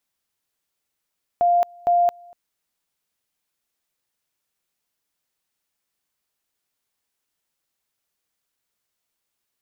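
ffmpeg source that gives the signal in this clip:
ffmpeg -f lavfi -i "aevalsrc='pow(10,(-14-28*gte(mod(t,0.46),0.22))/20)*sin(2*PI*699*t)':duration=0.92:sample_rate=44100" out.wav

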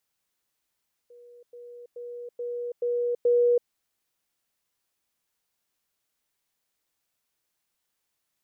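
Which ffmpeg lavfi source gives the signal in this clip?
ffmpeg -f lavfi -i "aevalsrc='pow(10,(-47.5+6*floor(t/0.43))/20)*sin(2*PI*482*t)*clip(min(mod(t,0.43),0.33-mod(t,0.43))/0.005,0,1)':duration=2.58:sample_rate=44100" out.wav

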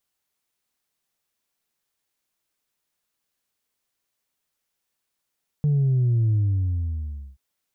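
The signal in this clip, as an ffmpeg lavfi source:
ffmpeg -f lavfi -i "aevalsrc='0.133*clip((1.73-t)/1.04,0,1)*tanh(1.12*sin(2*PI*150*1.73/log(65/150)*(exp(log(65/150)*t/1.73)-1)))/tanh(1.12)':duration=1.73:sample_rate=44100" out.wav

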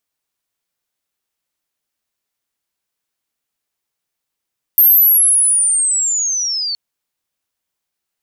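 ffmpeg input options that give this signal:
ffmpeg -f lavfi -i "aevalsrc='pow(10,(-5.5-12.5*t/1.97)/20)*sin(2*PI*(13000*t-8600*t*t/(2*1.97)))':duration=1.97:sample_rate=44100" out.wav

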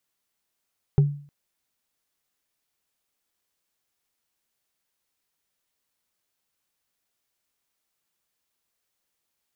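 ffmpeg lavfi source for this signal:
ffmpeg -f lavfi -i "aevalsrc='0.282*pow(10,-3*t/0.46)*sin(2*PI*144*t)+0.0794*pow(10,-3*t/0.136)*sin(2*PI*397*t)+0.0224*pow(10,-3*t/0.061)*sin(2*PI*778.2*t)+0.00631*pow(10,-3*t/0.033)*sin(2*PI*1286.4*t)+0.00178*pow(10,-3*t/0.021)*sin(2*PI*1921*t)':duration=0.31:sample_rate=44100" out.wav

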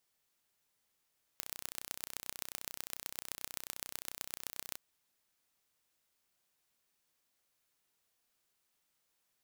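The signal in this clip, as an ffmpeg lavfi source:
ffmpeg -f lavfi -i "aevalsrc='0.299*eq(mod(n,1409),0)*(0.5+0.5*eq(mod(n,5636),0))':duration=3.37:sample_rate=44100" out.wav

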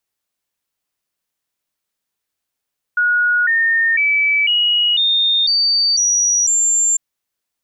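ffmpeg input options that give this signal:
ffmpeg -f lavfi -i "aevalsrc='0.251*clip(min(mod(t,0.5),0.5-mod(t,0.5))/0.005,0,1)*sin(2*PI*1450*pow(2,floor(t/0.5)/3)*mod(t,0.5))':duration=4:sample_rate=44100" out.wav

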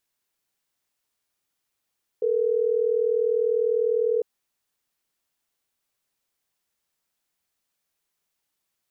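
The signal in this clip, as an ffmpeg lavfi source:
ffmpeg -f lavfi -i "aevalsrc='0.075*(sin(2*PI*440*t)+sin(2*PI*480*t))*clip(min(mod(t,6),2-mod(t,6))/0.005,0,1)':duration=3.12:sample_rate=44100" out.wav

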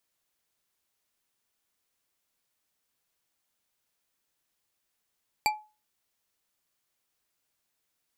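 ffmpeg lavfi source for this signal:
ffmpeg -f lavfi -i "aevalsrc='0.1*pow(10,-3*t/0.31)*sin(2*PI*852*t)+0.075*pow(10,-3*t/0.152)*sin(2*PI*2349*t)+0.0562*pow(10,-3*t/0.095)*sin(2*PI*4604.2*t)+0.0422*pow(10,-3*t/0.067)*sin(2*PI*7610.9*t)+0.0316*pow(10,-3*t/0.051)*sin(2*PI*11365.7*t)':duration=0.89:sample_rate=44100" out.wav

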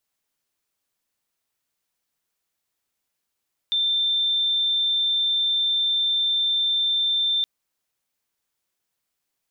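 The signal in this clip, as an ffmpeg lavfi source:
ffmpeg -f lavfi -i "aevalsrc='0.112*sin(2*PI*3570*t)':duration=3.72:sample_rate=44100" out.wav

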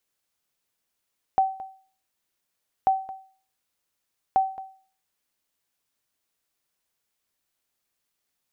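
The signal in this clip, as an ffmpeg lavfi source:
ffmpeg -f lavfi -i "aevalsrc='0.224*(sin(2*PI*767*mod(t,1.49))*exp(-6.91*mod(t,1.49)/0.44)+0.141*sin(2*PI*767*max(mod(t,1.49)-0.22,0))*exp(-6.91*max(mod(t,1.49)-0.22,0)/0.44))':duration=4.47:sample_rate=44100" out.wav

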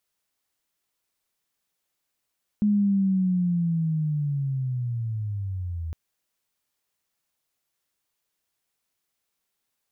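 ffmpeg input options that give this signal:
ffmpeg -f lavfi -i "aevalsrc='pow(10,(-17.5-11*t/3.31)/20)*sin(2*PI*(210*t-131*t*t/(2*3.31)))':duration=3.31:sample_rate=44100" out.wav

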